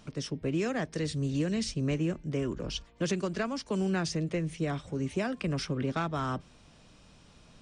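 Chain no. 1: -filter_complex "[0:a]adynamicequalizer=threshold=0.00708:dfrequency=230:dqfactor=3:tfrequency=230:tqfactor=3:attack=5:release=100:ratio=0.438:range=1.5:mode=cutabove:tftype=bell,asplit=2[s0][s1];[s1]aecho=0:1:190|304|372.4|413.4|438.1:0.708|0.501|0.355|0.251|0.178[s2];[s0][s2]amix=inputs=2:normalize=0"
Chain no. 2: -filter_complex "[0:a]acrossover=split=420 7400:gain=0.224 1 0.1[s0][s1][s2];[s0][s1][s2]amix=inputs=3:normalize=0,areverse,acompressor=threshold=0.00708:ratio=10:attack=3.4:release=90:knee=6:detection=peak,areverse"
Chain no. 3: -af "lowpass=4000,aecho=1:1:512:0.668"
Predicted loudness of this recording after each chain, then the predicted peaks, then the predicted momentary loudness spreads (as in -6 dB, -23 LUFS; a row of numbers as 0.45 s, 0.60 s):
-30.0 LUFS, -47.0 LUFS, -31.5 LUFS; -16.5 dBFS, -30.0 dBFS, -17.0 dBFS; 5 LU, 15 LU, 6 LU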